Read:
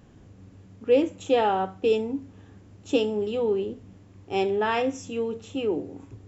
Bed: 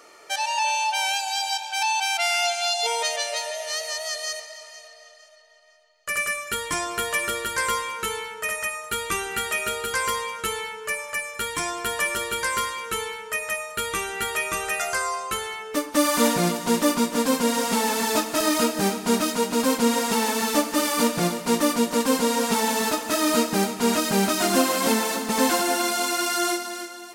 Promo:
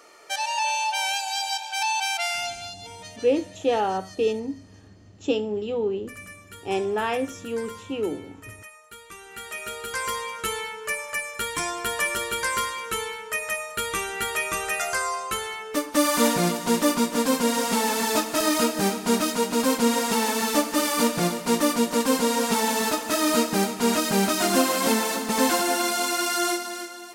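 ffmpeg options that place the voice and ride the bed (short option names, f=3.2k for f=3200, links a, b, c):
-filter_complex "[0:a]adelay=2350,volume=-1dB[a];[1:a]volume=15dB,afade=t=out:st=2.07:d=0.69:silence=0.16788,afade=t=in:st=9.17:d=1.36:silence=0.149624[b];[a][b]amix=inputs=2:normalize=0"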